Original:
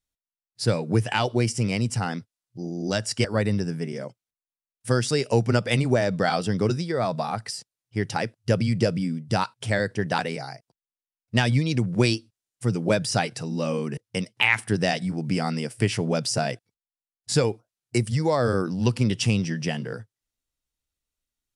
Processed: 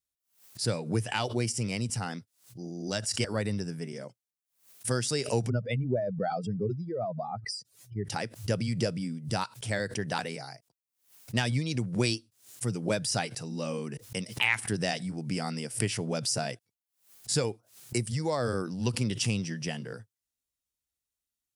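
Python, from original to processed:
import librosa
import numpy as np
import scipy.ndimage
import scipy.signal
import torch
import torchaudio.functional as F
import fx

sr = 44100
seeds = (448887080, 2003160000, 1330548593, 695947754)

y = fx.spec_expand(x, sr, power=2.1, at=(5.48, 8.04), fade=0.02)
y = scipy.signal.sosfilt(scipy.signal.butter(2, 47.0, 'highpass', fs=sr, output='sos'), y)
y = fx.high_shelf(y, sr, hz=5500.0, db=9.5)
y = fx.pre_swell(y, sr, db_per_s=140.0)
y = F.gain(torch.from_numpy(y), -7.5).numpy()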